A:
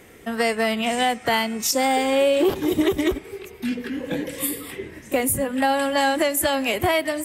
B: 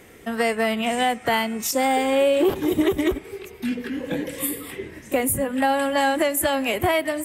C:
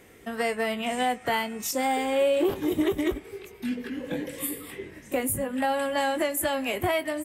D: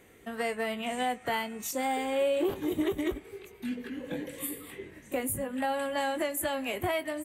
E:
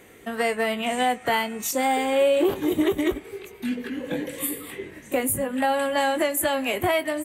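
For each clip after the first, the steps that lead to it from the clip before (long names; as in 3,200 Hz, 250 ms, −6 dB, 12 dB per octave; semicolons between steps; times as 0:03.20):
dynamic equaliser 5,000 Hz, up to −6 dB, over −44 dBFS, Q 1.3
double-tracking delay 20 ms −11 dB; level −5.5 dB
notch filter 5,200 Hz, Q 7; level −4.5 dB
low-shelf EQ 120 Hz −5.5 dB; level +8 dB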